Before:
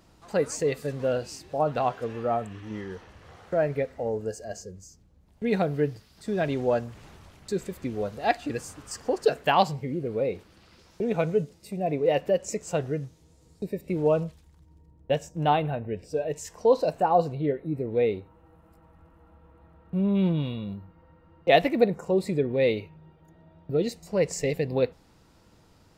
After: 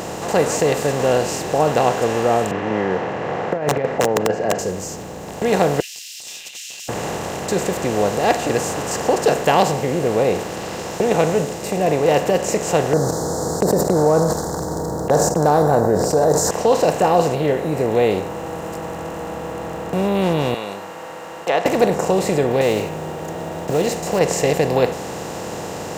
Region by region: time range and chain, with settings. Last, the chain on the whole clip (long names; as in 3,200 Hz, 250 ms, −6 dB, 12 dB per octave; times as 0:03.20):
0:02.51–0:04.59: elliptic band-pass filter 130–2,100 Hz, stop band 60 dB + compressor whose output falls as the input rises −30 dBFS, ratio −0.5 + wrap-around overflow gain 21.5 dB
0:05.80–0:06.89: Butterworth high-pass 2,700 Hz 72 dB per octave + parametric band 5,300 Hz +6.5 dB 0.4 octaves + compressor whose output falls as the input rises −55 dBFS
0:12.93–0:16.51: Chebyshev band-stop filter 1,500–4,400 Hz, order 4 + noise gate −47 dBFS, range −22 dB + envelope flattener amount 70%
0:20.54–0:21.66: treble cut that deepens with the level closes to 1,400 Hz, closed at −16.5 dBFS + high-pass filter 1,100 Hz
0:22.61–0:24.21: one scale factor per block 7 bits + downward compressor 1.5 to 1, threshold −30 dBFS
whole clip: compressor on every frequency bin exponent 0.4; high-pass filter 110 Hz 6 dB per octave; level +1.5 dB